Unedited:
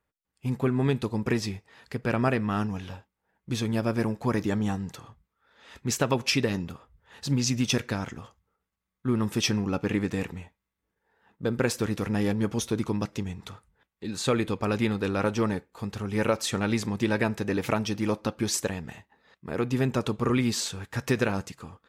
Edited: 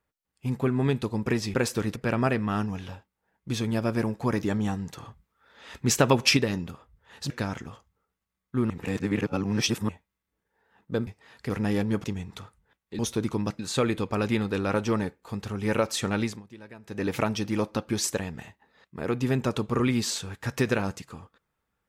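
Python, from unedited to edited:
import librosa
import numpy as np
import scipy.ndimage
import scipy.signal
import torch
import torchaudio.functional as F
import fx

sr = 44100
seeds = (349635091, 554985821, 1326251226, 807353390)

y = fx.edit(x, sr, fx.swap(start_s=1.54, length_s=0.43, other_s=11.58, other_length_s=0.42),
    fx.clip_gain(start_s=4.99, length_s=1.39, db=4.5),
    fx.cut(start_s=7.31, length_s=0.5),
    fx.reverse_span(start_s=9.21, length_s=1.19),
    fx.move(start_s=12.54, length_s=0.6, to_s=14.09),
    fx.fade_down_up(start_s=16.69, length_s=0.88, db=-20.5, fade_s=0.24), tone=tone)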